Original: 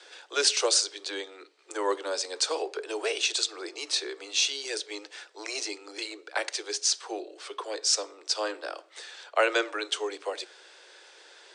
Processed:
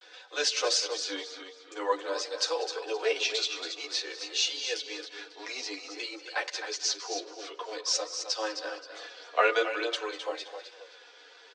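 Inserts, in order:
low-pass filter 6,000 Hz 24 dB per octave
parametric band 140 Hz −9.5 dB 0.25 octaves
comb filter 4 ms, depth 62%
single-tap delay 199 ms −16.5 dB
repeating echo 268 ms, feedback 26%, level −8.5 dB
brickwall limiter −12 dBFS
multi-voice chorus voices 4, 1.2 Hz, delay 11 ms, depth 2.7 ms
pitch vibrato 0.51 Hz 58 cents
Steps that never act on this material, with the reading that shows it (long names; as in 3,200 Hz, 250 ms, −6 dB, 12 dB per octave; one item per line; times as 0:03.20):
parametric band 140 Hz: nothing at its input below 250 Hz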